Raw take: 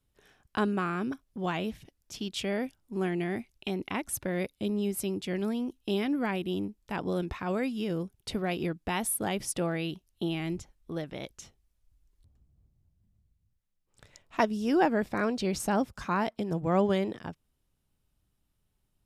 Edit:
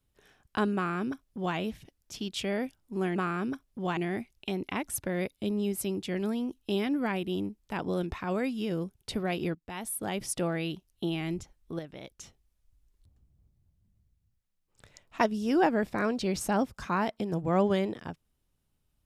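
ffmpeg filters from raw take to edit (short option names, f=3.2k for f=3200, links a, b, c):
-filter_complex "[0:a]asplit=6[a][b][c][d][e][f];[a]atrim=end=3.162[g];[b]atrim=start=0.748:end=1.562[h];[c]atrim=start=3.158:end=8.74,asetpts=PTS-STARTPTS,afade=t=out:st=5.578:d=0.004:c=hsin:silence=0.16788[i];[d]atrim=start=8.74:end=10.982,asetpts=PTS-STARTPTS,afade=t=in:d=0.76:silence=0.16788[j];[e]atrim=start=10.978:end=11.382,asetpts=PTS-STARTPTS,volume=-5.5dB[k];[f]atrim=start=11.378[l];[g][h]acrossfade=d=0.004:c1=hsin:c2=hsin[m];[i][j]concat=n=2:v=0:a=1[n];[m][n]acrossfade=d=0.004:c1=hsin:c2=hsin[o];[o][k]acrossfade=d=0.004:c1=hsin:c2=hsin[p];[p][l]acrossfade=d=0.004:c1=hsin:c2=hsin"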